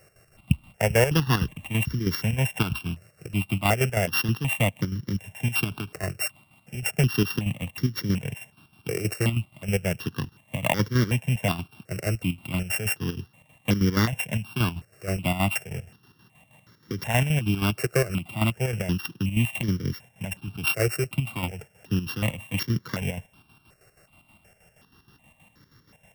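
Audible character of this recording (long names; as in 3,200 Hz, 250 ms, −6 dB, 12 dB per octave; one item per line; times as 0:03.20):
a buzz of ramps at a fixed pitch in blocks of 16 samples
chopped level 6.3 Hz, depth 60%, duty 55%
notches that jump at a steady rate 2.7 Hz 930–2,600 Hz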